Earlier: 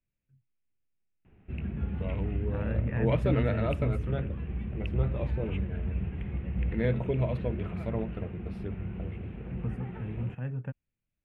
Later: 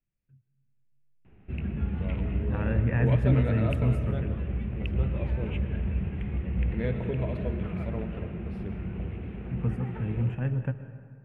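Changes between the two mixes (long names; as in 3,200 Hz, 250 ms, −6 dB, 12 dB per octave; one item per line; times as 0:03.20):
first voice −6.5 dB
second voice +3.5 dB
reverb: on, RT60 2.0 s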